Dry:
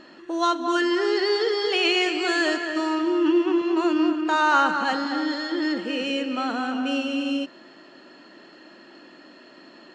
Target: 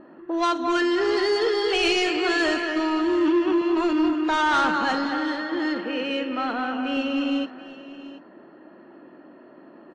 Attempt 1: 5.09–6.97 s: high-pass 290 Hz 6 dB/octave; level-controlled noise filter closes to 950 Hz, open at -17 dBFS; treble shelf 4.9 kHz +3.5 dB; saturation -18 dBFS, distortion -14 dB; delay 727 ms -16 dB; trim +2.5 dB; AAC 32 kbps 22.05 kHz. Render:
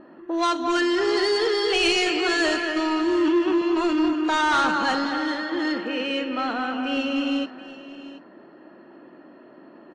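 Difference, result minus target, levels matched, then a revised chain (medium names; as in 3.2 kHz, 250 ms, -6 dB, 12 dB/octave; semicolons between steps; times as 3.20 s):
8 kHz band +3.5 dB
5.09–6.97 s: high-pass 290 Hz 6 dB/octave; level-controlled noise filter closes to 950 Hz, open at -17 dBFS; treble shelf 4.9 kHz -4.5 dB; saturation -18 dBFS, distortion -14 dB; delay 727 ms -16 dB; trim +2.5 dB; AAC 32 kbps 22.05 kHz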